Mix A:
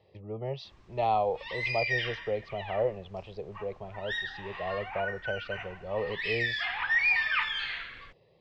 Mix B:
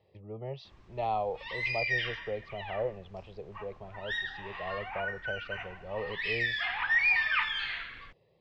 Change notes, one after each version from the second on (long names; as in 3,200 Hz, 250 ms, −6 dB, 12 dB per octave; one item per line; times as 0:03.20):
speech −4.5 dB
master: add bass and treble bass +1 dB, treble −3 dB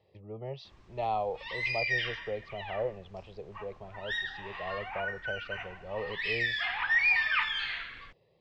master: add bass and treble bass −1 dB, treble +3 dB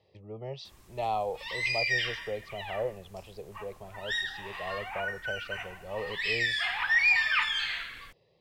background: remove low-pass filter 8,600 Hz 12 dB per octave
master: remove high-frequency loss of the air 160 metres